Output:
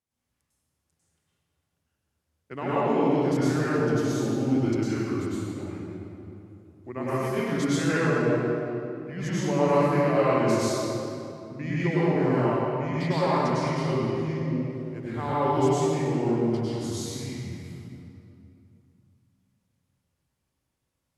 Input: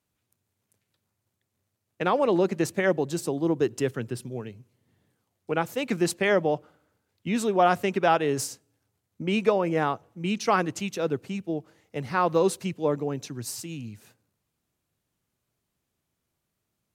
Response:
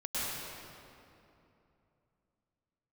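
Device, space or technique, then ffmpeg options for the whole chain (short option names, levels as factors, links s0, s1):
slowed and reverbed: -filter_complex "[0:a]asetrate=35280,aresample=44100[s0];[1:a]atrim=start_sample=2205[s1];[s0][s1]afir=irnorm=-1:irlink=0,volume=0.501"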